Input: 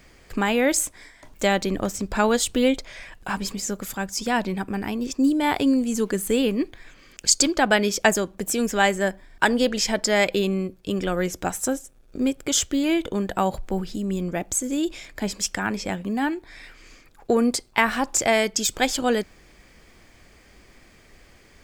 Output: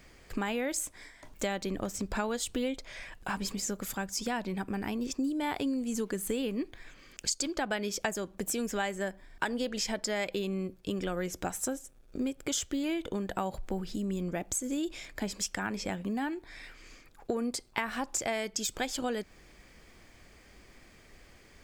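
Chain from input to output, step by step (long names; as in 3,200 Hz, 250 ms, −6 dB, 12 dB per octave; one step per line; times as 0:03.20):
downward compressor 4 to 1, threshold −26 dBFS, peak gain reduction 12 dB
level −4 dB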